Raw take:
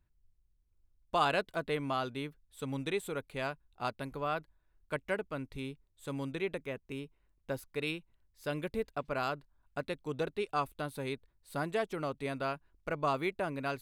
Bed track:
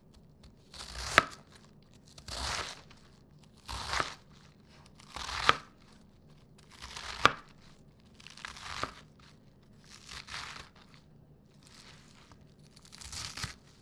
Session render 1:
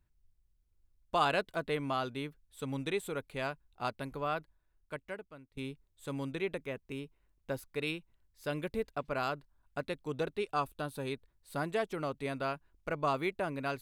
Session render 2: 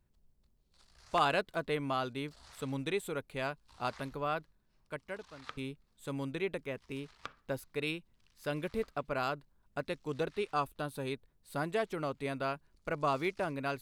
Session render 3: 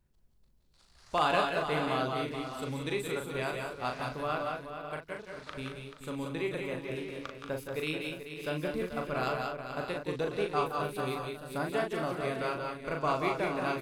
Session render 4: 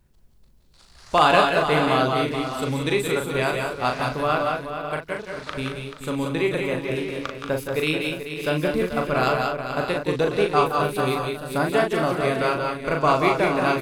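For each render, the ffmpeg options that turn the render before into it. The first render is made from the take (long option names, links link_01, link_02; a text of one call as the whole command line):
ffmpeg -i in.wav -filter_complex "[0:a]asettb=1/sr,asplit=3[link_01][link_02][link_03];[link_01]atrim=end=10.564[link_04];[link_02]atrim=start=10.56:end=11.11,asetpts=PTS-STARTPTS,afade=type=in:duration=0.004:curve=qsin,afade=type=out:start_time=0.546:duration=0.004:curve=qsin,bandreject=frequency=2100:width=6.6[link_05];[link_03]atrim=start=11.106[link_06];[link_04][link_05]acrossfade=duration=0.004:curve1=hsin:curve2=qsin[link_07];[link_07][link_06]acrossfade=duration=0.004:curve1=qsin:curve2=hsin,asplit=2[link_08][link_09];[link_08]atrim=end=5.57,asetpts=PTS-STARTPTS,afade=type=out:start_time=4.3:duration=1.27:silence=0.0630957[link_10];[link_09]atrim=start=5.57,asetpts=PTS-STARTPTS,afade=type=in:duration=0.004:curve=hsin:silence=0.0630957[link_11];[link_10][link_11]concat=n=2:v=0:a=1" out.wav
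ffmpeg -i in.wav -i bed.wav -filter_complex "[1:a]volume=-21.5dB[link_01];[0:a][link_01]amix=inputs=2:normalize=0" out.wav
ffmpeg -i in.wav -filter_complex "[0:a]asplit=2[link_01][link_02];[link_02]adelay=39,volume=-5dB[link_03];[link_01][link_03]amix=inputs=2:normalize=0,asplit=2[link_04][link_05];[link_05]aecho=0:1:168|185|434|543|616:0.376|0.562|0.316|0.224|0.266[link_06];[link_04][link_06]amix=inputs=2:normalize=0" out.wav
ffmpeg -i in.wav -af "volume=11dB" out.wav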